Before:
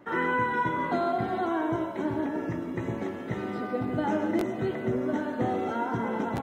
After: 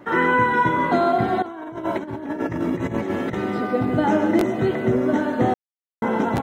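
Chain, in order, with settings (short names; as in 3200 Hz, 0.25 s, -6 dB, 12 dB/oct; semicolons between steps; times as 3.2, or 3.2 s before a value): 1.42–3.35 negative-ratio compressor -34 dBFS, ratio -0.5; 5.54–6.02 mute; gain +8.5 dB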